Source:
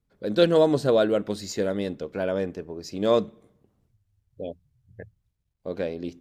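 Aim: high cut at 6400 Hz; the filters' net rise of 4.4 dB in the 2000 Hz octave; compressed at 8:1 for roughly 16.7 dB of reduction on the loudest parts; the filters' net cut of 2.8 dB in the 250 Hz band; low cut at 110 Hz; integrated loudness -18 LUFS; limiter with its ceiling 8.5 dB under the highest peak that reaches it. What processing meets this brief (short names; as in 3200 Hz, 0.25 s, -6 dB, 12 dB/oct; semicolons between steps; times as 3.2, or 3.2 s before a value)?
HPF 110 Hz; LPF 6400 Hz; bell 250 Hz -4 dB; bell 2000 Hz +6.5 dB; compressor 8:1, threshold -32 dBFS; gain +23 dB; limiter -6 dBFS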